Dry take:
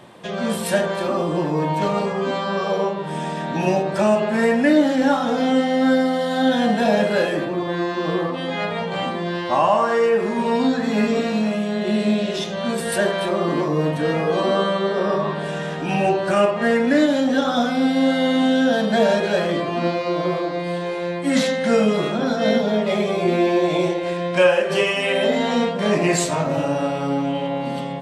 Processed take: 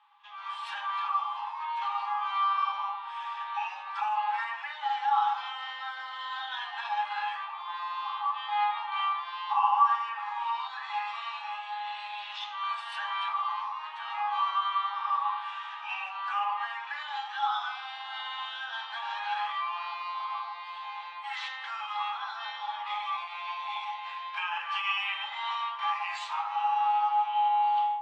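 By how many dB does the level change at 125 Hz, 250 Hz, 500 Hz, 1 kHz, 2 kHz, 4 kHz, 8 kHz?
under -40 dB, under -40 dB, under -40 dB, -2.5 dB, -10.0 dB, -8.5 dB, under -25 dB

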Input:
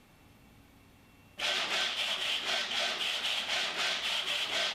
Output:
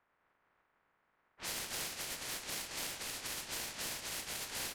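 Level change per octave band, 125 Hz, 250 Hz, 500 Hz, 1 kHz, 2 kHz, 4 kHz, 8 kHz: n/a, -3.0 dB, -9.0 dB, -9.5 dB, -11.5 dB, -13.0 dB, +2.0 dB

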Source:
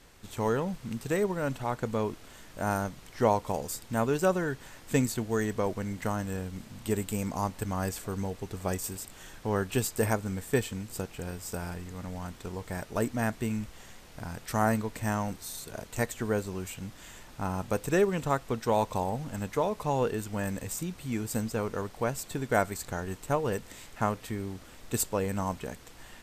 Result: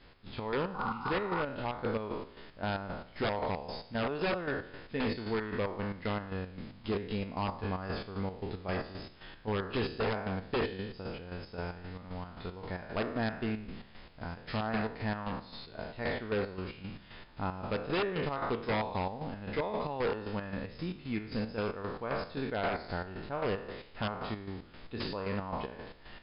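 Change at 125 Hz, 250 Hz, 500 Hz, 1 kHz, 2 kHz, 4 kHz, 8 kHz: -5.5 dB, -4.5 dB, -4.5 dB, -4.0 dB, -1.5 dB, +1.0 dB, under -40 dB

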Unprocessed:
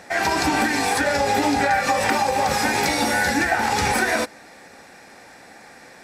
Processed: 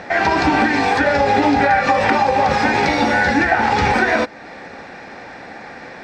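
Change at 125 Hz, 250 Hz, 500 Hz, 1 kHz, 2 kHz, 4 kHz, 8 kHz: +6.0, +6.0, +5.5, +5.5, +4.5, 0.0, -9.5 dB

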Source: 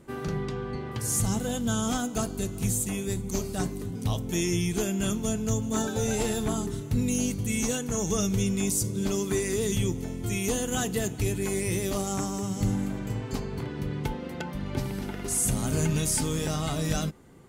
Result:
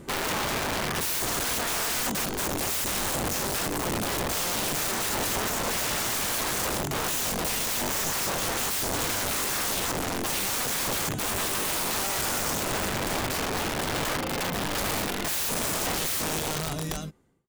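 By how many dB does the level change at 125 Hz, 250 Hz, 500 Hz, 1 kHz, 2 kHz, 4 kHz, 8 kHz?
-7.5, -6.0, -1.5, +7.5, +8.5, +8.5, +2.5 dB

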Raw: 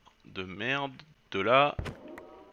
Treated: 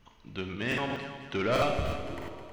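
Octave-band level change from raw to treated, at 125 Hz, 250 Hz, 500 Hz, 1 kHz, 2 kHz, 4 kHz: +4.5, +3.0, -1.0, -4.0, -2.0, -2.0 dB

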